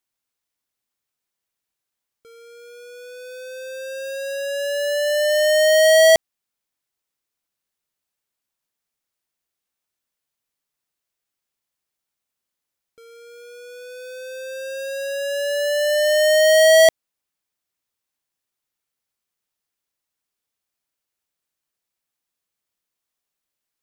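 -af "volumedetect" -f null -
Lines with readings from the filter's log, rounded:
mean_volume: -24.0 dB
max_volume: -9.6 dB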